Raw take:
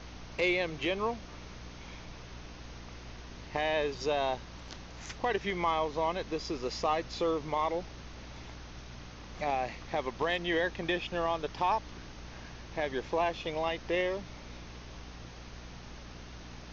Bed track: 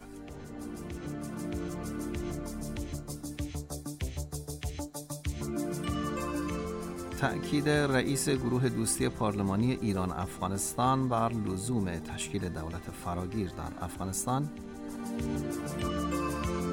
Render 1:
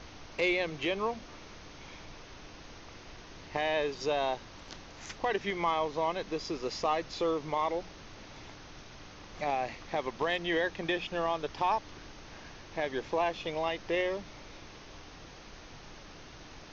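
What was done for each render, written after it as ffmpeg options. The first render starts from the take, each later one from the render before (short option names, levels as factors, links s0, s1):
-af "bandreject=f=60:t=h:w=6,bandreject=f=120:t=h:w=6,bandreject=f=180:t=h:w=6,bandreject=f=240:t=h:w=6"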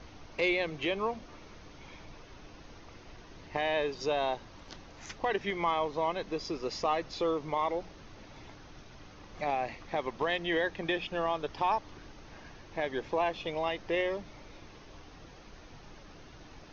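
-af "afftdn=nr=6:nf=-50"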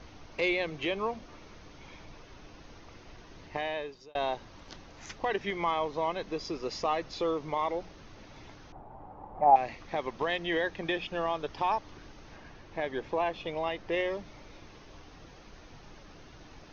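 -filter_complex "[0:a]asettb=1/sr,asplit=3[s0][s1][s2];[s0]atrim=end=8.724[s3];[s1]atrim=start=8.72:end=9.56,asetpts=PTS-STARTPTS,afade=t=in:d=0.004:c=qsin,afade=t=out:st=0.836:d=0.004:c=qsin,lowpass=f=830:t=q:w=5.8[s4];[s2]atrim=start=9.556[s5];[s3][s4]acrossfade=d=0.004:c1=hsin:c2=qsin[s6];[s6][s5]acrossfade=d=0.004:c1=qsin:c2=hsin,asettb=1/sr,asplit=3[s7][s8][s9];[s7]atrim=end=12.364[s10];[s8]atrim=start=12.36:end=13.92,asetpts=PTS-STARTPTS,afade=t=in:d=0.004:c=qsin,afade=t=out:st=1.556:d=0.004:c=qsin,highshelf=f=5200:g=-7[s11];[s9]atrim=start=13.916[s12];[s10][s11]acrossfade=d=0.004:c1=hsin:c2=qsin[s13];[s13][s12]acrossfade=d=0.004:c1=qsin:c2=hsin,asplit=2[s14][s15];[s14]atrim=end=4.15,asetpts=PTS-STARTPTS,afade=t=out:st=3.45:d=0.7[s16];[s15]atrim=start=4.15,asetpts=PTS-STARTPTS,afade=t=in:d=0.004:c=hsin[s17];[s16][s17]concat=n=2:v=0:a=1"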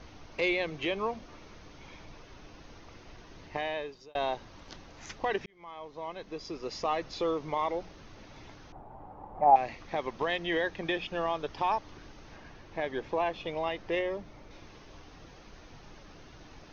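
-filter_complex "[0:a]asettb=1/sr,asplit=3[s0][s1][s2];[s0]atrim=end=13.994[s3];[s1]atrim=start=13.99:end=14.51,asetpts=PTS-STARTPTS,afade=t=in:d=0.004:c=qsin,afade=t=out:st=0.516:d=0.004:c=qsin,equalizer=f=4900:w=0.35:g=-6[s4];[s2]atrim=start=14.506[s5];[s3][s4]acrossfade=d=0.004:c1=hsin:c2=qsin[s6];[s6][s5]acrossfade=d=0.004:c1=qsin:c2=hsin,asplit=2[s7][s8];[s7]atrim=end=5.46,asetpts=PTS-STARTPTS,afade=t=out:st=5.456:d=0.004:c=hsin[s9];[s8]atrim=start=5.46,asetpts=PTS-STARTPTS,afade=t=in:d=1.58[s10];[s9][s10]concat=n=2:v=0:a=1"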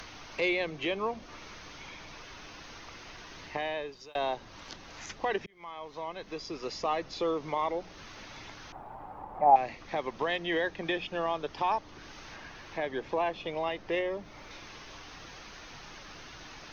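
-filter_complex "[0:a]acrossover=split=130|950[s0][s1][s2];[s0]alimiter=level_in=18.8:limit=0.0631:level=0:latency=1:release=125,volume=0.0531[s3];[s2]acompressor=mode=upward:threshold=0.0112:ratio=2.5[s4];[s3][s1][s4]amix=inputs=3:normalize=0"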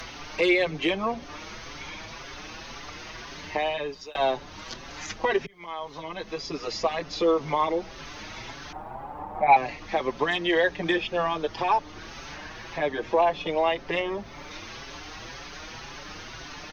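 -filter_complex "[0:a]aeval=exprs='0.316*sin(PI/2*2*val(0)/0.316)':c=same,asplit=2[s0][s1];[s1]adelay=5.7,afreqshift=1.9[s2];[s0][s2]amix=inputs=2:normalize=1"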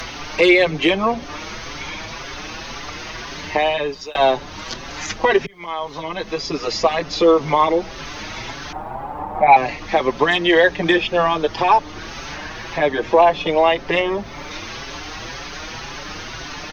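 -af "volume=2.82,alimiter=limit=0.708:level=0:latency=1"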